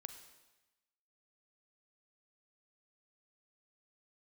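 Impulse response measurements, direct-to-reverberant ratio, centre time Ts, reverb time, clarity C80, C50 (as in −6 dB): 8.0 dB, 17 ms, 1.1 s, 10.5 dB, 9.0 dB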